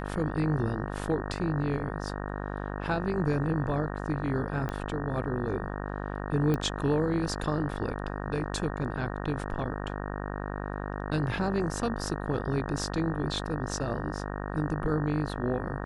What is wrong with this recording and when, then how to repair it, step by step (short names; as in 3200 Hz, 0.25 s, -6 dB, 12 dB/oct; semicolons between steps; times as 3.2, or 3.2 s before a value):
buzz 50 Hz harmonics 37 -35 dBFS
4.69 pop -20 dBFS
6.54 pop -17 dBFS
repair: de-click; de-hum 50 Hz, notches 37